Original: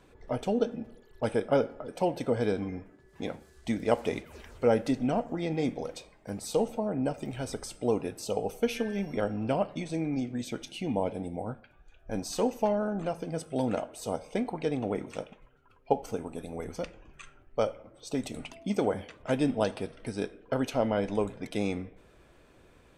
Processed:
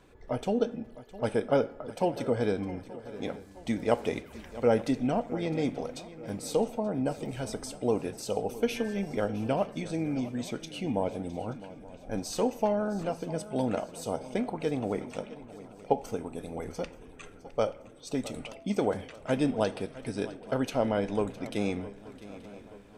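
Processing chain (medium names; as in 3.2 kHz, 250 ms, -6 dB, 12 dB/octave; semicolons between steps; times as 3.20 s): shuffle delay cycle 880 ms, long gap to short 3:1, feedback 47%, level -17 dB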